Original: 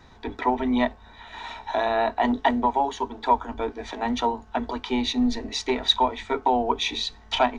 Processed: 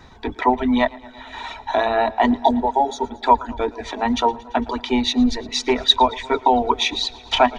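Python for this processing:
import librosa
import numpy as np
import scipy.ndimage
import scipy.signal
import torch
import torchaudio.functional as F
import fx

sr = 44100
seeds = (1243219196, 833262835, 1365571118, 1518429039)

y = fx.dereverb_blind(x, sr, rt60_s=0.81)
y = fx.spec_repair(y, sr, seeds[0], start_s=2.39, length_s=0.67, low_hz=950.0, high_hz=3300.0, source='both')
y = fx.echo_warbled(y, sr, ms=113, feedback_pct=75, rate_hz=2.8, cents=55, wet_db=-22)
y = F.gain(torch.from_numpy(y), 6.0).numpy()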